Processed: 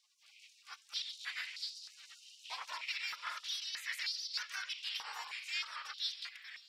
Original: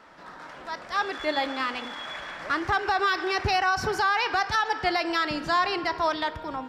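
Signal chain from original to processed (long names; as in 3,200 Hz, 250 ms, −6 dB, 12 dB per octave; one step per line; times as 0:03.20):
gate on every frequency bin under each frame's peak −25 dB weak
high-pass on a step sequencer 3.2 Hz 980–4,500 Hz
level −3 dB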